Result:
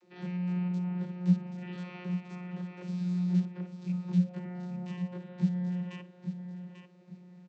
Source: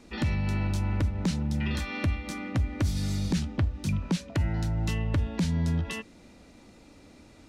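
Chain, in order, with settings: spectrogram pixelated in time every 50 ms; feedback delay 842 ms, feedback 27%, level -9 dB; vocoder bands 32, saw 179 Hz

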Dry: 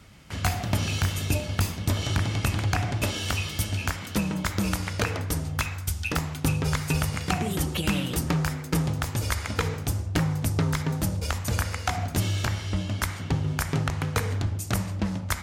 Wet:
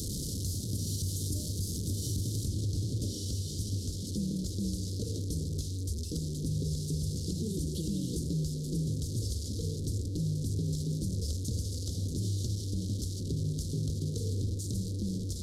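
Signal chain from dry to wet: one-bit delta coder 64 kbps, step -25 dBFS; inverse Chebyshev band-stop 730–2600 Hz, stop band 40 dB; treble shelf 8.6 kHz +2.5 dB, from 2.46 s -10.5 dB; peak limiter -21.5 dBFS, peak gain reduction 9 dB; trim -3 dB

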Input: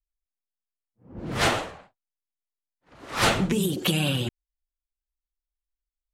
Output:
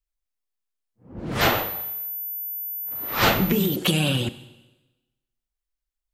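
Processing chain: Schroeder reverb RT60 1.1 s, combs from 30 ms, DRR 14 dB; 1.41–3.76 s: class-D stage that switches slowly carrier 14 kHz; trim +2.5 dB

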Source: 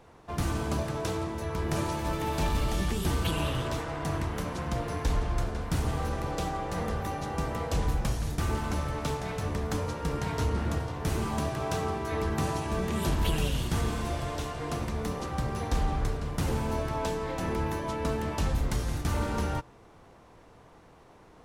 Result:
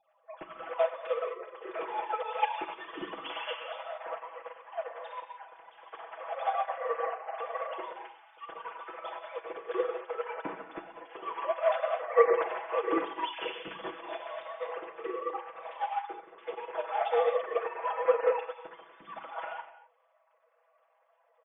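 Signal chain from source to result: formants replaced by sine waves; hum notches 50/100/150/200/250/300/350/400/450 Hz; comb 6.1 ms, depth 86%; gated-style reverb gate 290 ms flat, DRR 1 dB; upward expansion 2.5:1, over -31 dBFS

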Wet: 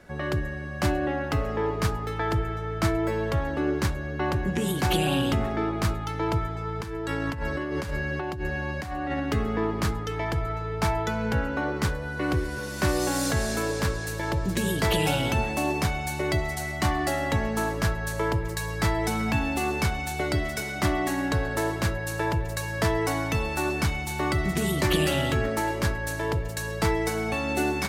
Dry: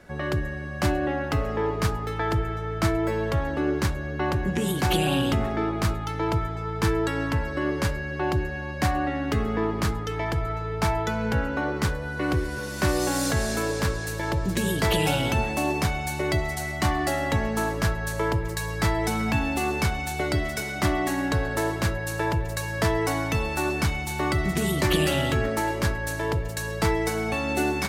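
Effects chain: 6.80–9.20 s: compressor with a negative ratio -29 dBFS, ratio -1; trim -1 dB

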